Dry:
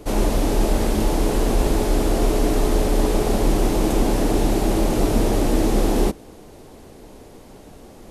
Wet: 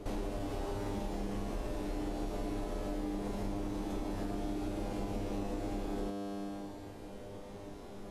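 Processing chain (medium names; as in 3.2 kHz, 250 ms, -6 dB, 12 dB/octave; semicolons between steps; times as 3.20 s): 0.39–0.95 s: comb filter that takes the minimum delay 7.3 ms; low-pass 3.7 kHz 6 dB/octave; feedback comb 100 Hz, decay 1.5 s, harmonics all, mix 90%; compression 6:1, threshold -46 dBFS, peak gain reduction 16 dB; trim +11 dB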